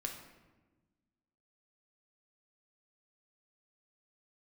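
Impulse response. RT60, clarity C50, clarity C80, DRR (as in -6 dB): 1.2 s, 6.0 dB, 8.5 dB, 2.0 dB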